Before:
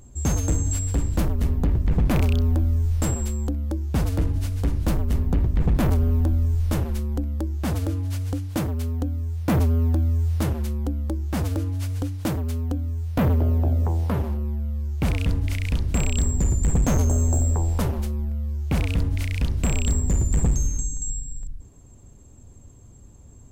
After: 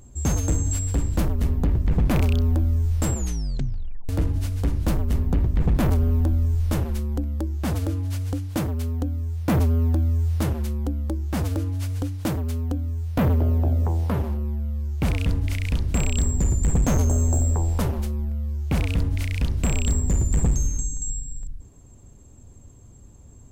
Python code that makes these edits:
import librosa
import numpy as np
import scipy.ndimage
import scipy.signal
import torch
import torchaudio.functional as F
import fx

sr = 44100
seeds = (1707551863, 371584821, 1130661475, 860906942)

y = fx.edit(x, sr, fx.tape_stop(start_s=3.13, length_s=0.96), tone=tone)